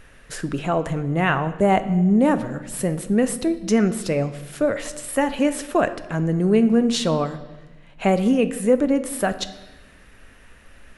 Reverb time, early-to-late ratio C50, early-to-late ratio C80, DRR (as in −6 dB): 1.1 s, 13.5 dB, 15.5 dB, 10.5 dB